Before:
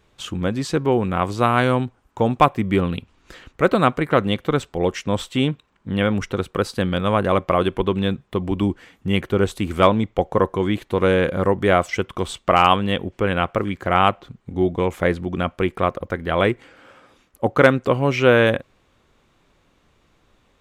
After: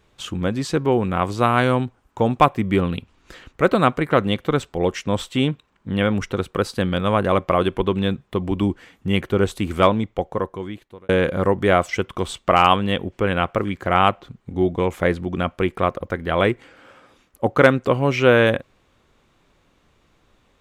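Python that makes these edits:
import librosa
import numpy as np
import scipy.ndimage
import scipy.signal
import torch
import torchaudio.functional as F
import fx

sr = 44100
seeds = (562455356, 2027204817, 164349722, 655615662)

y = fx.edit(x, sr, fx.fade_out_span(start_s=9.73, length_s=1.36), tone=tone)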